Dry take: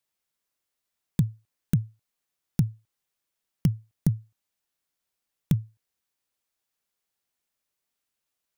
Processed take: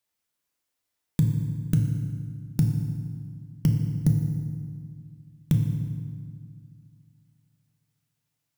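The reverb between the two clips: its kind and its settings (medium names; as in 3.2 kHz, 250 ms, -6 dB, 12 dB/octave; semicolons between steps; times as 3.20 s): FDN reverb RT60 1.9 s, low-frequency decay 1.4×, high-frequency decay 0.75×, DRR 2 dB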